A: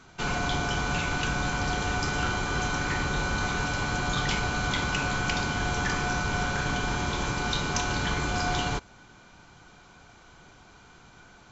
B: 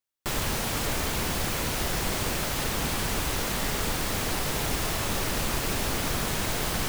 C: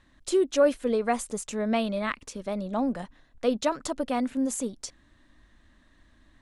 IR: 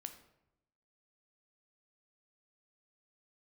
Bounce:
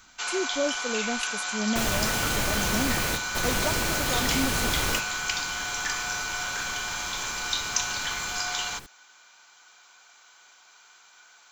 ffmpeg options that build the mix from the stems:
-filter_complex "[0:a]highpass=1k,aemphasis=mode=production:type=50fm,volume=-0.5dB[a];[1:a]adelay=1500,volume=-0.5dB,asplit=3[b][c][d];[c]volume=-13.5dB[e];[d]volume=-17.5dB[f];[2:a]equalizer=f=200:w=5.1:g=6.5,acrossover=split=490[g][h];[g]aeval=exprs='val(0)*(1-0.7/2+0.7/2*cos(2*PI*1.8*n/s))':c=same[i];[h]aeval=exprs='val(0)*(1-0.7/2-0.7/2*cos(2*PI*1.8*n/s))':c=same[j];[i][j]amix=inputs=2:normalize=0,volume=-2.5dB,asplit=2[k][l];[l]apad=whole_len=369912[m];[b][m]sidechaingate=range=-33dB:threshold=-54dB:ratio=16:detection=peak[n];[3:a]atrim=start_sample=2205[o];[e][o]afir=irnorm=-1:irlink=0[p];[f]aecho=0:1:473:1[q];[a][n][k][p][q]amix=inputs=5:normalize=0"

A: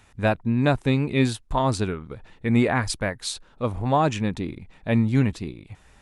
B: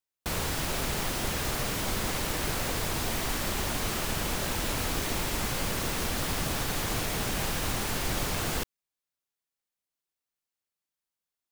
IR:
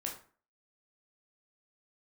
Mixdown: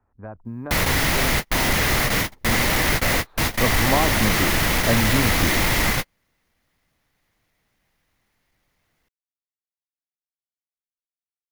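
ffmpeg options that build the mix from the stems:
-filter_complex "[0:a]lowpass=f=1.3k:w=0.5412,lowpass=f=1.3k:w=1.3066,acrossover=split=99|990[a][b][c];[a]acompressor=threshold=-38dB:ratio=4[d];[b]acompressor=threshold=-31dB:ratio=4[e];[c]acompressor=threshold=-40dB:ratio=4[f];[d][e][f]amix=inputs=3:normalize=0,equalizer=f=150:w=5.9:g=-12.5,volume=-1.5dB,afade=t=in:st=3.21:d=0.4:silence=0.281838,asplit=2[g][h];[1:a]equalizer=f=400:t=o:w=0.33:g=-4,equalizer=f=2k:t=o:w=0.33:g=9,equalizer=f=8k:t=o:w=0.33:g=-6,asoftclip=type=tanh:threshold=-24.5dB,adelay=450,volume=1dB[i];[h]apad=whole_len=527847[j];[i][j]sidechaingate=range=-51dB:threshold=-55dB:ratio=16:detection=peak[k];[g][k]amix=inputs=2:normalize=0,dynaudnorm=f=190:g=3:m=11dB"

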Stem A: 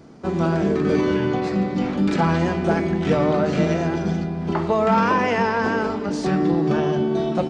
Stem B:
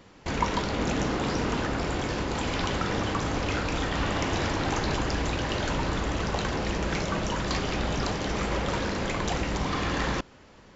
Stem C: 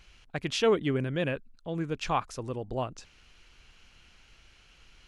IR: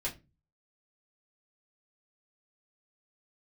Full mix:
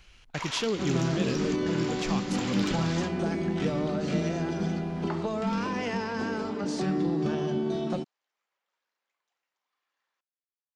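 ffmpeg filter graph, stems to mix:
-filter_complex "[0:a]highpass=f=180:p=1,asoftclip=type=tanh:threshold=-10dB,adelay=550,volume=-3dB[a];[1:a]highpass=980,asoftclip=type=tanh:threshold=-22dB,volume=-0.5dB[b];[2:a]volume=1dB,asplit=2[c][d];[d]apad=whole_len=474159[e];[b][e]sidechaingate=range=-50dB:threshold=-48dB:ratio=16:detection=peak[f];[a][f][c]amix=inputs=3:normalize=0,acrossover=split=310|3000[g][h][i];[h]acompressor=threshold=-33dB:ratio=6[j];[g][j][i]amix=inputs=3:normalize=0"

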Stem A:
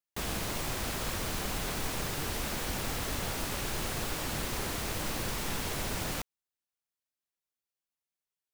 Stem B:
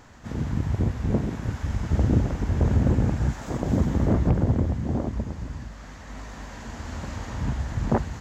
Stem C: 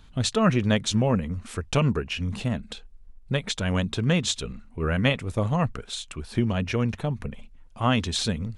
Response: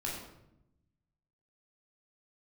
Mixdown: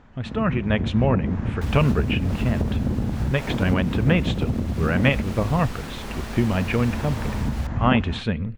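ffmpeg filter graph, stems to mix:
-filter_complex "[0:a]adelay=1450,volume=-7.5dB[a];[1:a]lowpass=f=2k:p=1,volume=-3dB[b];[2:a]highshelf=f=3.7k:t=q:w=1.5:g=-13.5,volume=-4.5dB,asplit=2[c][d];[d]volume=-23.5dB[e];[a][b]amix=inputs=2:normalize=0,equalizer=f=220:w=4.1:g=6,acompressor=threshold=-27dB:ratio=6,volume=0dB[f];[3:a]atrim=start_sample=2205[g];[e][g]afir=irnorm=-1:irlink=0[h];[c][f][h]amix=inputs=3:normalize=0,dynaudnorm=f=130:g=11:m=7dB,highshelf=f=7k:g=-11"

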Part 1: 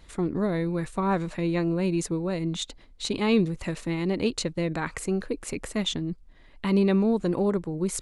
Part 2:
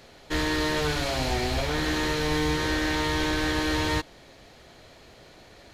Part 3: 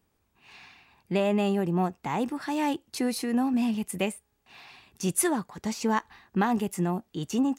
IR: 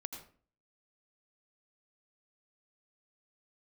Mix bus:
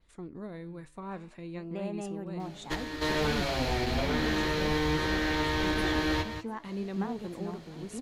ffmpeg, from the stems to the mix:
-filter_complex "[0:a]volume=-10.5dB,asplit=2[a][b];[1:a]adelay=2400,volume=2dB[c];[2:a]highshelf=f=2.7k:g=-11,adelay=600,volume=-7.5dB,asplit=2[d][e];[e]volume=-19dB[f];[b]apad=whole_len=358906[g];[c][g]sidechaingate=range=-10dB:threshold=-51dB:ratio=16:detection=peak[h];[f]aecho=0:1:697:1[i];[a][h][d][i]amix=inputs=4:normalize=0,adynamicequalizer=threshold=0.00282:dfrequency=8700:dqfactor=0.91:tfrequency=8700:tqfactor=0.91:attack=5:release=100:ratio=0.375:range=4:mode=cutabove:tftype=bell,flanger=delay=3.9:depth=9.8:regen=87:speed=0.58:shape=triangular"

